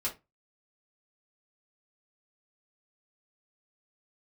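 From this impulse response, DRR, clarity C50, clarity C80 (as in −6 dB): −6.5 dB, 13.5 dB, 23.0 dB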